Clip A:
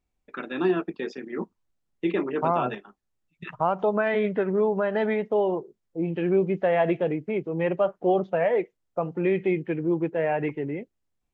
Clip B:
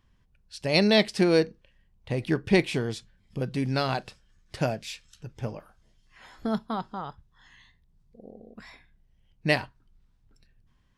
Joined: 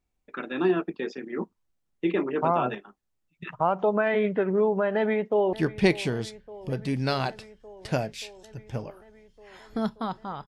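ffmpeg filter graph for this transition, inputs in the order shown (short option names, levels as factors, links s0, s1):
-filter_complex "[0:a]apad=whole_dur=10.47,atrim=end=10.47,atrim=end=5.532[s0];[1:a]atrim=start=2.218:end=7.16[s1];[s0][s1]acrossfade=d=0.004:c1=hsin:c2=hsin,asplit=2[s2][s3];[s3]afade=t=in:st=4.95:d=0.01,afade=t=out:st=5.53:d=0.01,aecho=0:1:580|1160|1740|2320|2900|3480|4060|4640|5220|5800|6380|6960:0.133352|0.106682|0.0853454|0.0682763|0.054621|0.0436968|0.0349575|0.027966|0.0223728|0.0178982|0.0143186|0.0114549[s4];[s2][s4]amix=inputs=2:normalize=0"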